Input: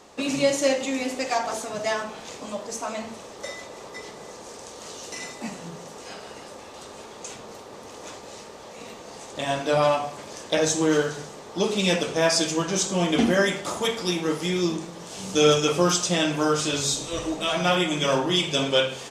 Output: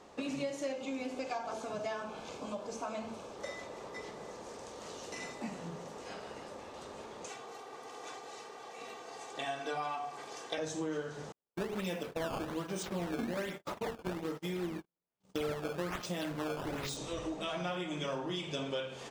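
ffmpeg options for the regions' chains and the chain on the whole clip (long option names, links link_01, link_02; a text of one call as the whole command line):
ffmpeg -i in.wav -filter_complex "[0:a]asettb=1/sr,asplit=3[link_01][link_02][link_03];[link_01]atrim=end=0.724[link_04];[link_02]atrim=start=0.72:end=3.37,asetpts=PTS-STARTPTS,afade=type=in:duration=0.004:curve=qsin,afade=type=out:start_time=2.646:duration=0.004:curve=qsin,asuperstop=centerf=1900:order=4:qfactor=6.8,acrossover=split=6500[link_05][link_06];[link_06]acompressor=threshold=-46dB:ratio=4:attack=1:release=60[link_07];[link_05][link_07]amix=inputs=2:normalize=0[link_08];[link_03]atrim=start=3.366[link_09];[link_04][link_08]acrossfade=duration=0.004:curve1=hsin:curve2=qsin[link_10];[link_10][link_09]acrossfade=duration=0.004:curve1=qsin:curve2=hsin,asettb=1/sr,asplit=3[link_11][link_12][link_13];[link_11]atrim=end=7.284[link_14];[link_12]atrim=start=7.28:end=10.58,asetpts=PTS-STARTPTS,afade=type=in:duration=0.004:curve=qsin,afade=type=out:start_time=3.296:duration=0.004:curve=qsin,highpass=frequency=160:width=0.5412,highpass=frequency=160:width=1.3066,equalizer=frequency=330:width_type=o:width=0.91:gain=-9,aecho=1:1:2.6:0.76,atrim=end_sample=145530[link_15];[link_13]atrim=start=10.576[link_16];[link_14][link_15]acrossfade=duration=0.004:curve1=hsin:curve2=qsin[link_17];[link_17][link_16]acrossfade=duration=0.004:curve1=qsin:curve2=hsin,asettb=1/sr,asplit=3[link_18][link_19][link_20];[link_18]atrim=end=11.324[link_21];[link_19]atrim=start=11.32:end=16.97,asetpts=PTS-STARTPTS,afade=type=in:duration=0.004:curve=qsin,afade=type=out:start_time=5.646:duration=0.004:curve=qsin,acrusher=samples=13:mix=1:aa=0.000001:lfo=1:lforange=20.8:lforate=1.2,agate=range=-52dB:threshold=-31dB:ratio=16:release=100:detection=peak[link_22];[link_20]atrim=start=16.966[link_23];[link_21][link_22]acrossfade=duration=0.004:curve1=hsin:curve2=qsin[link_24];[link_24][link_23]acrossfade=duration=0.004:curve1=qsin:curve2=hsin,highshelf=frequency=3600:gain=-9,acompressor=threshold=-31dB:ratio=4,volume=-4.5dB" out.wav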